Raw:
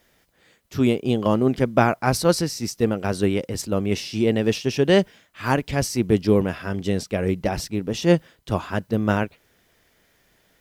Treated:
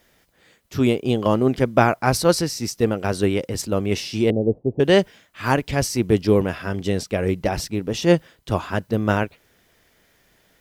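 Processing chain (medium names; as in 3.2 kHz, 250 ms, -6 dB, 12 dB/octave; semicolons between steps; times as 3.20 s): 4.30–4.80 s: steep low-pass 710 Hz 36 dB/octave; dynamic bell 200 Hz, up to -3 dB, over -30 dBFS, Q 1.7; trim +2 dB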